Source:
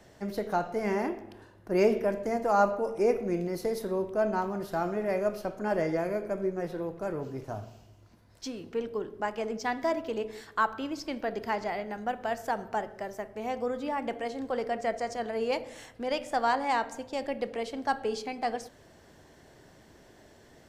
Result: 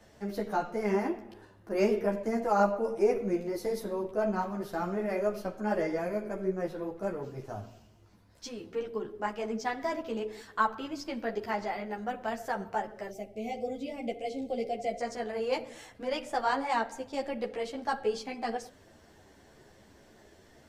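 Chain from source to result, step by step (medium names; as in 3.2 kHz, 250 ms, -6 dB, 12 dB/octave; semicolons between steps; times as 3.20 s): time-frequency box 13.10–15.01 s, 810–2000 Hz -21 dB; three-phase chorus; trim +1.5 dB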